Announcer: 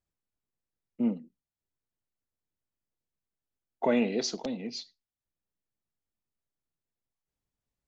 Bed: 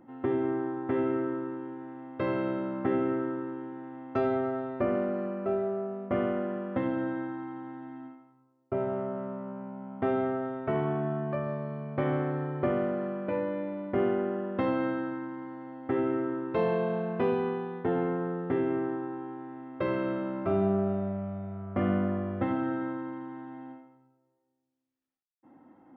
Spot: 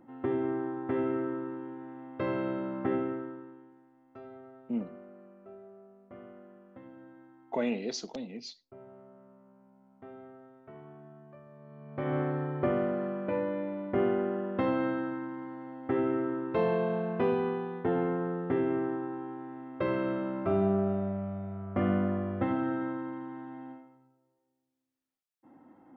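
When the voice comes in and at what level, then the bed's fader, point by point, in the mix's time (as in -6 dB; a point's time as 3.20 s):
3.70 s, -5.0 dB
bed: 2.93 s -2 dB
3.91 s -20.5 dB
11.50 s -20.5 dB
12.18 s -0.5 dB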